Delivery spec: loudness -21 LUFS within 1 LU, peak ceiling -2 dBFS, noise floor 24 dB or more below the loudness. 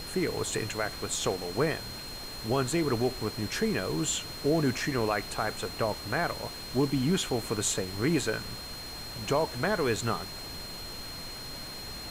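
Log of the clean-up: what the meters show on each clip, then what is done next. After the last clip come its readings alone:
steady tone 4200 Hz; tone level -41 dBFS; noise floor -41 dBFS; noise floor target -55 dBFS; loudness -31.0 LUFS; peak -15.0 dBFS; loudness target -21.0 LUFS
-> notch 4200 Hz, Q 30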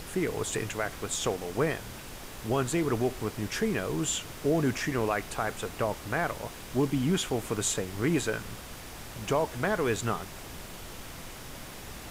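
steady tone none; noise floor -44 dBFS; noise floor target -55 dBFS
-> noise print and reduce 11 dB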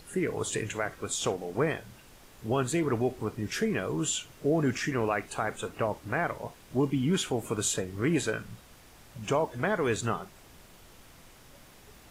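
noise floor -54 dBFS; noise floor target -55 dBFS
-> noise print and reduce 6 dB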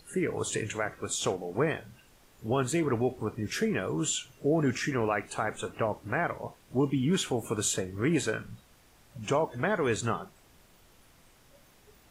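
noise floor -60 dBFS; loudness -30.5 LUFS; peak -15.5 dBFS; loudness target -21.0 LUFS
-> gain +9.5 dB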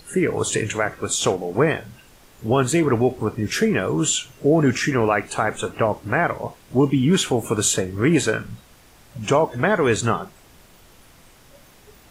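loudness -21.0 LUFS; peak -6.0 dBFS; noise floor -51 dBFS

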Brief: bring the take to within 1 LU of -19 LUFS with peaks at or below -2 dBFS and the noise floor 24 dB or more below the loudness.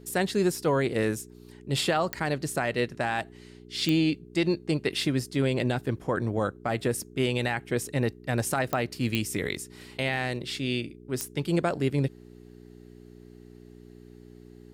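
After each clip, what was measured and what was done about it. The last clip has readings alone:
clicks 5; hum 60 Hz; harmonics up to 420 Hz; hum level -48 dBFS; loudness -28.5 LUFS; peak -11.5 dBFS; loudness target -19.0 LUFS
-> de-click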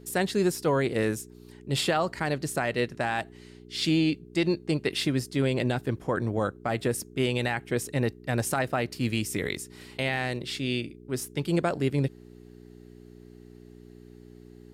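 clicks 0; hum 60 Hz; harmonics up to 420 Hz; hum level -48 dBFS
-> de-hum 60 Hz, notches 7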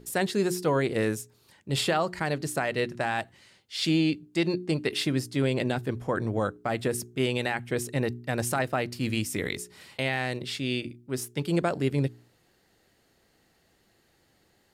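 hum none; loudness -29.0 LUFS; peak -13.5 dBFS; loudness target -19.0 LUFS
-> gain +10 dB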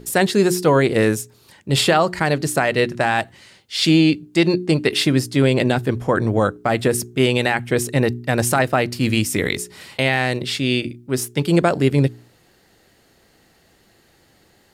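loudness -19.0 LUFS; peak -3.5 dBFS; noise floor -57 dBFS

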